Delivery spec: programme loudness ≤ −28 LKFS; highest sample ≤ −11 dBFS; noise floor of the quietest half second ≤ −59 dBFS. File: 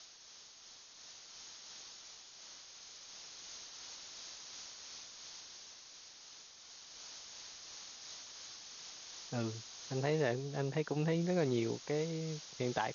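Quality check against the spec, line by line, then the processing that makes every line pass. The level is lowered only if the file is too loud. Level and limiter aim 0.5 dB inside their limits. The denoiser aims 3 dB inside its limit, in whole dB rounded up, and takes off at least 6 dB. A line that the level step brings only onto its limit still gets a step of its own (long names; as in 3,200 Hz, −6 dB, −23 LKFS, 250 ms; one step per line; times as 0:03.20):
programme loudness −41.0 LKFS: in spec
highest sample −18.5 dBFS: in spec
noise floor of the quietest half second −57 dBFS: out of spec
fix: broadband denoise 6 dB, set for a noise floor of −57 dBFS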